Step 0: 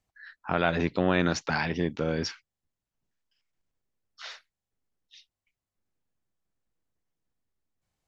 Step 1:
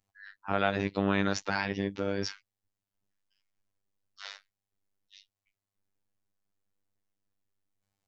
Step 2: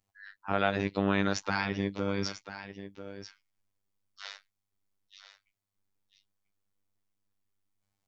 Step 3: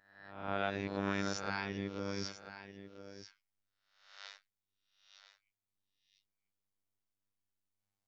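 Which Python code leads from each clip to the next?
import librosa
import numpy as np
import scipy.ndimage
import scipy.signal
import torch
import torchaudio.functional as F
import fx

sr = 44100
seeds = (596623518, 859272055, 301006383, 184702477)

y1 = fx.robotise(x, sr, hz=98.8)
y2 = y1 + 10.0 ** (-12.0 / 20.0) * np.pad(y1, (int(992 * sr / 1000.0), 0))[:len(y1)]
y3 = fx.spec_swells(y2, sr, rise_s=0.71)
y3 = F.gain(torch.from_numpy(y3), -9.0).numpy()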